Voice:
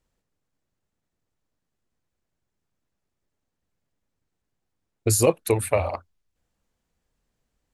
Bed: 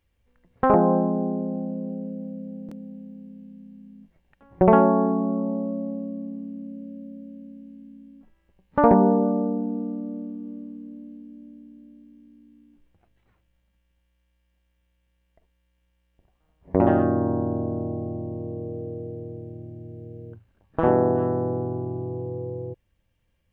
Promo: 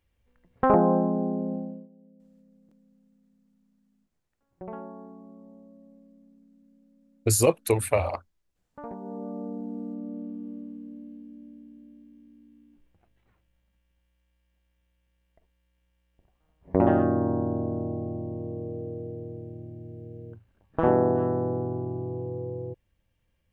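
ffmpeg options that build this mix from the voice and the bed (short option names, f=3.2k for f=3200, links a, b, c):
-filter_complex "[0:a]adelay=2200,volume=-1.5dB[a];[1:a]volume=19.5dB,afade=t=out:st=1.53:d=0.35:silence=0.0841395,afade=t=in:st=9.01:d=1.38:silence=0.0841395[b];[a][b]amix=inputs=2:normalize=0"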